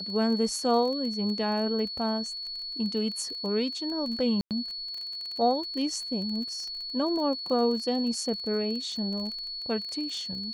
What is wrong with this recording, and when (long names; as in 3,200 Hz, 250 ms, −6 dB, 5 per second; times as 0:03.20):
surface crackle 22 per second −34 dBFS
whistle 4,400 Hz −34 dBFS
0:04.41–0:04.51: drop-out 98 ms